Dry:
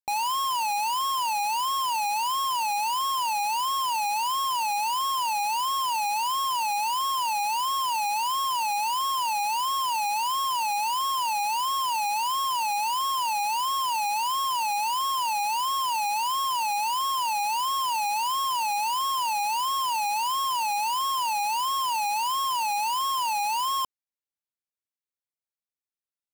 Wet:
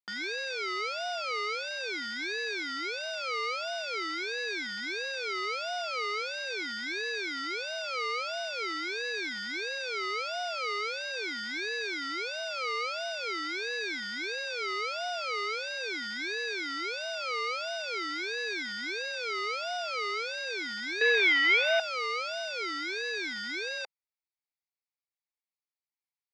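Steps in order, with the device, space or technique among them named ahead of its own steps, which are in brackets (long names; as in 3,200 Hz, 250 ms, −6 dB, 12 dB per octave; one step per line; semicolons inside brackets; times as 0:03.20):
0:21.01–0:21.80: flat-topped bell 1,800 Hz +15.5 dB
voice changer toy (ring modulator whose carrier an LFO sweeps 500 Hz, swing 25%, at 0.43 Hz; loudspeaker in its box 540–4,800 Hz, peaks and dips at 580 Hz −9 dB, 820 Hz +5 dB, 1,500 Hz −10 dB, 2,200 Hz +8 dB, 3,100 Hz −8 dB, 4,700 Hz +6 dB)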